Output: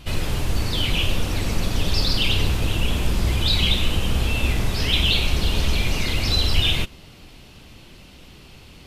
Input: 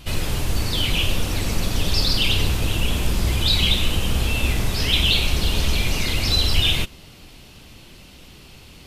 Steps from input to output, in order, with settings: high shelf 5200 Hz -5.5 dB

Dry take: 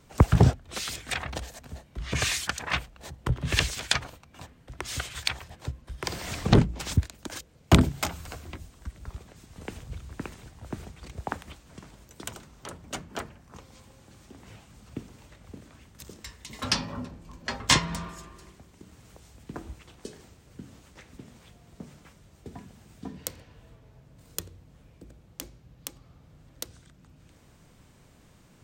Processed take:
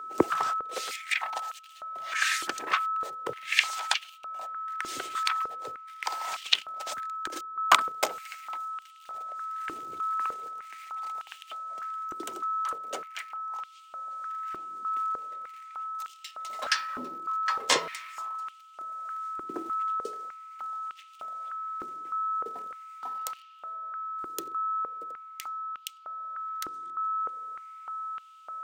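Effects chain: 6.08–8.07 transient shaper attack +6 dB, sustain -10 dB; in parallel at -9 dB: bit-crush 7-bit; on the sum: whine 1300 Hz -31 dBFS; stepped high-pass 3.3 Hz 350–2900 Hz; gain -6.5 dB

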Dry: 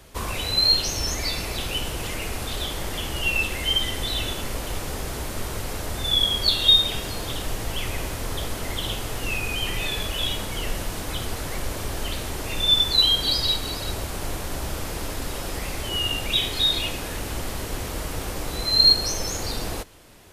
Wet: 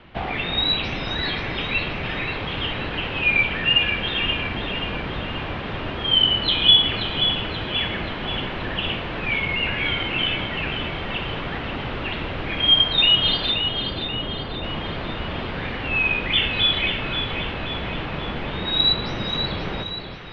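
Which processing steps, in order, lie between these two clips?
13.51–14.64 high shelf 2100 Hz -10 dB; split-band echo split 1300 Hz, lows 0.322 s, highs 0.531 s, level -8 dB; mistuned SSB -310 Hz 180–3600 Hz; gain +5.5 dB

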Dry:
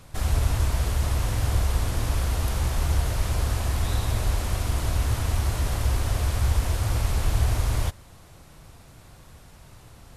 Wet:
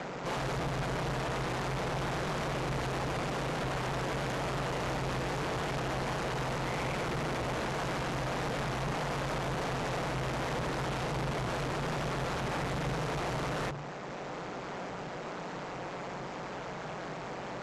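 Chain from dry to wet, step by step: octaver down 1 oct, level -4 dB; HPF 53 Hz 12 dB/oct; ring modulator 160 Hz; in parallel at -1 dB: compressor, threshold -54 dBFS, peak gain reduction 31.5 dB; on the sum: tone controls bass -2 dB, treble -14 dB; notches 50/100/150/200/250 Hz; overdrive pedal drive 28 dB, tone 7500 Hz, clips at -26.5 dBFS; low shelf 330 Hz -8.5 dB; speed mistake 78 rpm record played at 45 rpm

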